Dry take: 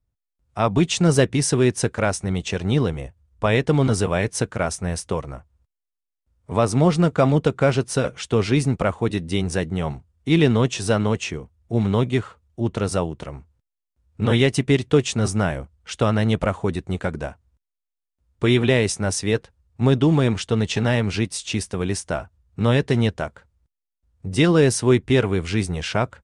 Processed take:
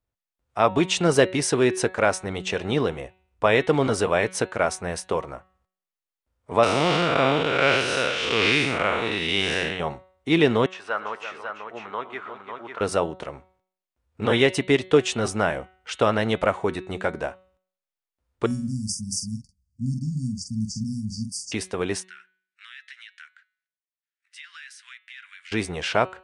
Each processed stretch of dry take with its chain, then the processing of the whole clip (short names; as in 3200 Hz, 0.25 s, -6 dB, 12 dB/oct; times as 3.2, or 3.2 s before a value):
6.63–9.8 time blur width 0.201 s + bell 2900 Hz +15 dB 2.3 oct
10.66–12.81 band-pass 1300 Hz, Q 1.8 + tapped delay 0.116/0.339/0.548 s -17/-10.5/-6 dB
18.46–21.52 brick-wall FIR band-stop 260–4500 Hz + doubler 46 ms -6 dB
22.03–25.52 steep high-pass 1600 Hz 48 dB/oct + tilt -3.5 dB/oct + compressor 4:1, threshold -42 dBFS
whole clip: tone controls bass -13 dB, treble -6 dB; de-hum 186.5 Hz, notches 23; gain +2.5 dB